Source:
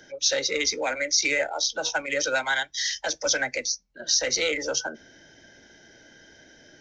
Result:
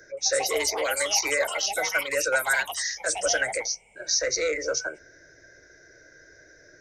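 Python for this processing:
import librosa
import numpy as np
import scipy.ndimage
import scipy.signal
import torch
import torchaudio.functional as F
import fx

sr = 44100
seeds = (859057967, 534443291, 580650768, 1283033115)

y = fx.fixed_phaser(x, sr, hz=840.0, stages=6)
y = fx.echo_pitch(y, sr, ms=173, semitones=6, count=2, db_per_echo=-6.0)
y = F.gain(torch.from_numpy(y), 2.0).numpy()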